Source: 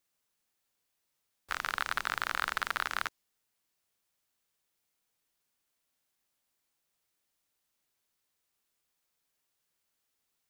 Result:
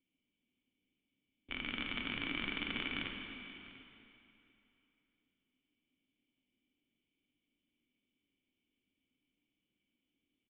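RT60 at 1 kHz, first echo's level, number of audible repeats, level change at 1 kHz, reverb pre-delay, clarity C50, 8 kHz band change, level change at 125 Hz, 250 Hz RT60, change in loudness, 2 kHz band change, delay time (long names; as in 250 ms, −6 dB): 2.9 s, −18.5 dB, 1, −15.0 dB, 13 ms, 2.5 dB, below −30 dB, +5.0 dB, 2.9 s, −6.0 dB, −6.5 dB, 697 ms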